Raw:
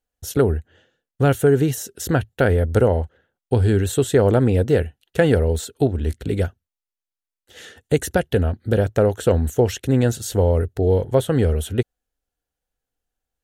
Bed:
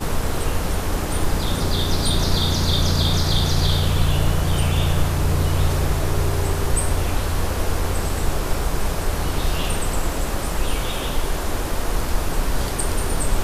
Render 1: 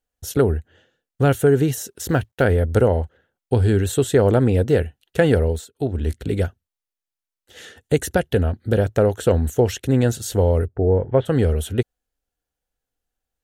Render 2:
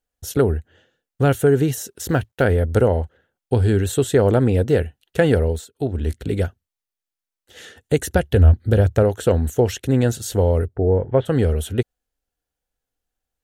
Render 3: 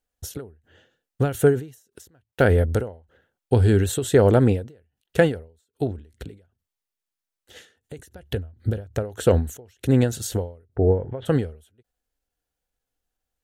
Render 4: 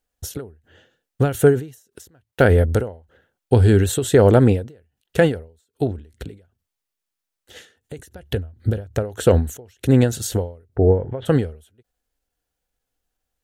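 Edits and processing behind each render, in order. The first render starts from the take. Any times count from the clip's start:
0:01.90–0:02.43: mu-law and A-law mismatch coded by A; 0:05.46–0:05.97: duck −15.5 dB, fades 0.24 s; 0:10.66–0:11.25: low-pass filter 1,200 Hz → 2,900 Hz 24 dB per octave
0:08.12–0:09.03: parametric band 76 Hz +12 dB
every ending faded ahead of time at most 140 dB per second
level +3.5 dB; brickwall limiter −3 dBFS, peak gain reduction 3 dB

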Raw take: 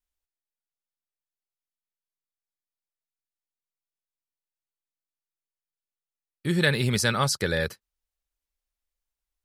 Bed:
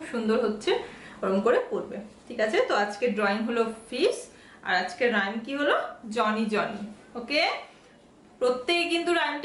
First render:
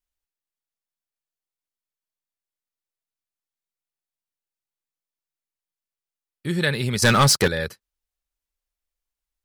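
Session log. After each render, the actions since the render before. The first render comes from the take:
0:07.02–0:07.48: leveller curve on the samples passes 3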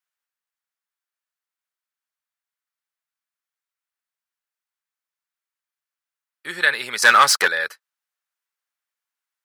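high-pass filter 650 Hz 12 dB per octave
parametric band 1,500 Hz +9 dB 1.3 octaves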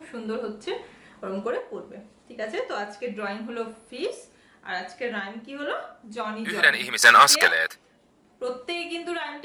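mix in bed −6 dB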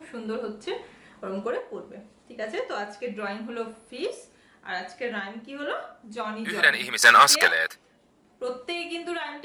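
level −1 dB

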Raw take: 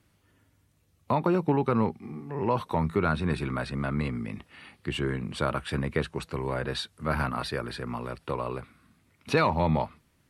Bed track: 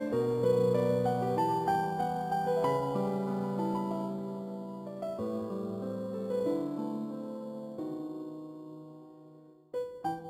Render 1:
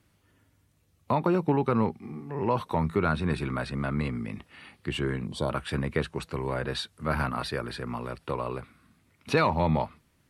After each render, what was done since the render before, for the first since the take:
0:05.27–0:05.50: gain on a spectral selection 1,100–3,000 Hz −15 dB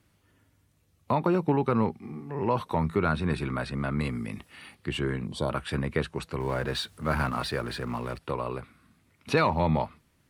0:04.00–0:04.75: high-shelf EQ 6,000 Hz +11.5 dB
0:06.40–0:08.19: mu-law and A-law mismatch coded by mu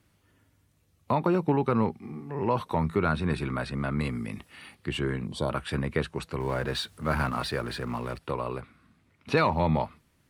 0:08.60–0:09.32: high-shelf EQ 8,900 Hz → 5,700 Hz −11 dB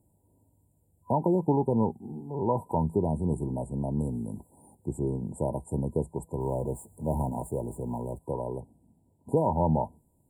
brick-wall band-stop 1,000–7,000 Hz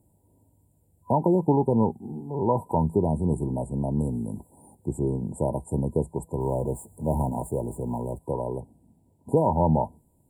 level +3.5 dB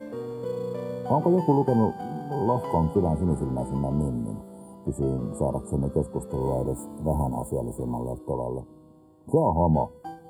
mix in bed track −4.5 dB

